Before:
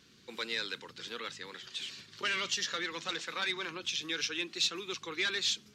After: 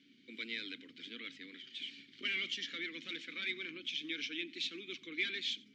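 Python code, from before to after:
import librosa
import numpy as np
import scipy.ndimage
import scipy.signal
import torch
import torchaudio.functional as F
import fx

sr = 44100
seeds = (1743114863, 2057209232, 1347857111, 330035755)

y = fx.vowel_filter(x, sr, vowel='i')
y = y + 10.0 ** (-23.0 / 20.0) * np.pad(y, (int(90 * sr / 1000.0), 0))[:len(y)]
y = y * librosa.db_to_amplitude(8.0)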